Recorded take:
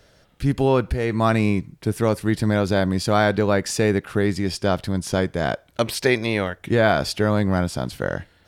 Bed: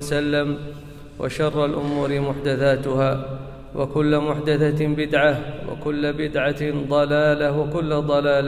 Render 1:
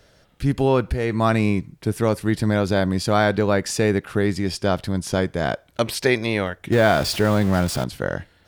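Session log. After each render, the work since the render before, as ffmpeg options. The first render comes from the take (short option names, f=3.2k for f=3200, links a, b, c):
-filter_complex "[0:a]asettb=1/sr,asplit=3[a][b][c];[a]atrim=end=6.724[d];[b]atrim=start=6.72:end=7.84,asetpts=PTS-STARTPTS,afade=t=in:d=0.004:c=qsin,afade=t=out:st=1.116:d=0.004:c=qsin,aeval=exprs='val(0)+0.5*0.0473*sgn(val(0))':c=same[e];[c]atrim=start=7.836[f];[d][e]acrossfade=d=0.004:c1=hsin:c2=qsin[g];[g][f]acrossfade=d=0.004:c1=qsin:c2=hsin"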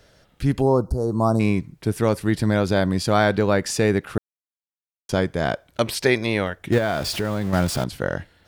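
-filter_complex "[0:a]asplit=3[a][b][c];[a]afade=t=out:st=0.6:d=0.02[d];[b]asuperstop=centerf=2400:order=8:qfactor=0.64,afade=t=in:st=0.6:d=0.02,afade=t=out:st=1.39:d=0.02[e];[c]afade=t=in:st=1.39:d=0.02[f];[d][e][f]amix=inputs=3:normalize=0,asettb=1/sr,asplit=3[g][h][i];[g]atrim=end=6.784[j];[h]atrim=start=6.78:end=7.53,asetpts=PTS-STARTPTS,afade=t=in:d=0.004:c=qsin,afade=t=out:st=0.746:d=0.004:c=qsin,acompressor=threshold=-24dB:ratio=2:attack=3.2:release=140:knee=1:detection=peak[k];[i]atrim=start=7.526[l];[j][k]acrossfade=d=0.004:c1=hsin:c2=qsin[m];[m][l]acrossfade=d=0.004:c1=qsin:c2=hsin,asplit=3[n][o][p];[n]atrim=end=4.18,asetpts=PTS-STARTPTS,afade=t=out:st=4.176:d=0.004:c=hsin[q];[o]atrim=start=4.18:end=5.09,asetpts=PTS-STARTPTS,volume=0[r];[p]atrim=start=5.09,asetpts=PTS-STARTPTS,afade=t=in:d=0.004:c=hsin[s];[q][r][s]concat=n=3:v=0:a=1"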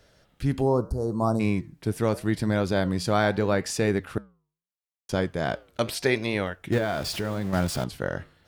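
-af "flanger=delay=3.4:depth=6.8:regen=-87:speed=0.78:shape=triangular"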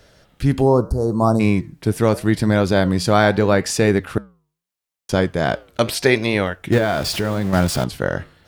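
-af "volume=8dB"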